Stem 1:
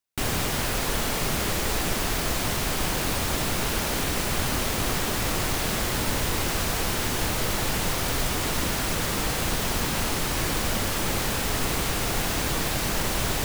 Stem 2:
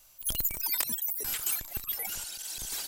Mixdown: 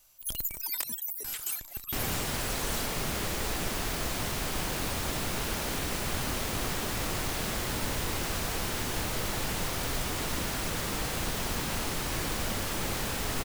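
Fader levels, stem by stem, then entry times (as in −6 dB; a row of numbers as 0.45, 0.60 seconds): −6.0, −3.5 decibels; 1.75, 0.00 seconds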